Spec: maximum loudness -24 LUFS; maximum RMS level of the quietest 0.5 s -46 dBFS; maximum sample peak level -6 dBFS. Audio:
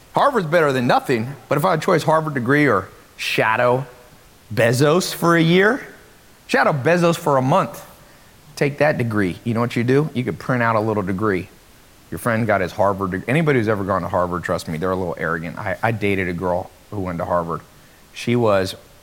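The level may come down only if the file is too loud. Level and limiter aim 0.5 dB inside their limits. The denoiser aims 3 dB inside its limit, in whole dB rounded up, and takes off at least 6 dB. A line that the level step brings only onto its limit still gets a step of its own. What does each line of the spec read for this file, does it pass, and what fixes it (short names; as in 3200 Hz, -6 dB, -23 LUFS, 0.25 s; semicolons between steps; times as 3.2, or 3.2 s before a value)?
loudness -19.0 LUFS: fail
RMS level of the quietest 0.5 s -48 dBFS: OK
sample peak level -3.5 dBFS: fail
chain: gain -5.5 dB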